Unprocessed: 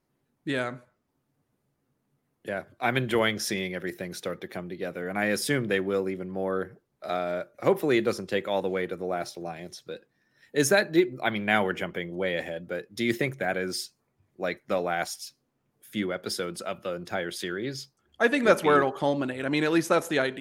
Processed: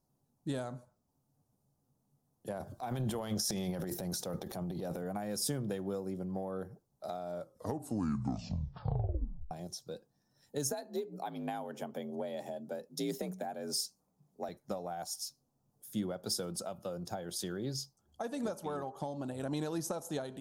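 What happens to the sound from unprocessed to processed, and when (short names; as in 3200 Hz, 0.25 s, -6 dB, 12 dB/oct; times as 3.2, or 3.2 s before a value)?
2.5–4.97 transient shaper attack -4 dB, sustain +11 dB
7.32 tape stop 2.19 s
10.7–14.49 frequency shift +50 Hz
whole clip: EQ curve 180 Hz 0 dB, 360 Hz -4 dB, 790 Hz +10 dB, 2100 Hz -20 dB, 5600 Hz 0 dB; compressor 12:1, threshold -28 dBFS; bell 730 Hz -10.5 dB 1.9 oct; gain +1 dB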